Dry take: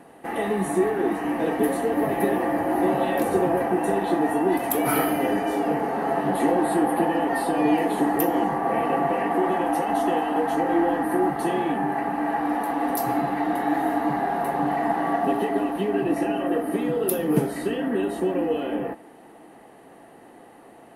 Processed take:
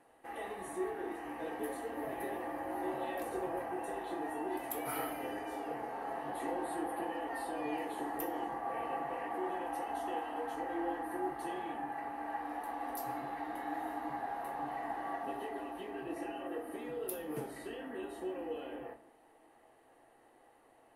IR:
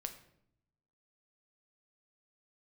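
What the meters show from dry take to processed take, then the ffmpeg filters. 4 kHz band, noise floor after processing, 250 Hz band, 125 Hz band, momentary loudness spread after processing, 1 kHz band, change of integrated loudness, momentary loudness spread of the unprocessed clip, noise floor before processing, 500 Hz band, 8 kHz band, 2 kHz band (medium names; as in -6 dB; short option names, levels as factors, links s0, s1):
-14.0 dB, -65 dBFS, -19.0 dB, -22.5 dB, 4 LU, -14.0 dB, -16.0 dB, 4 LU, -48 dBFS, -16.5 dB, -14.0 dB, -14.0 dB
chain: -filter_complex "[0:a]equalizer=f=200:t=o:w=1:g=-13.5[s0];[1:a]atrim=start_sample=2205,asetrate=79380,aresample=44100[s1];[s0][s1]afir=irnorm=-1:irlink=0,volume=0.473"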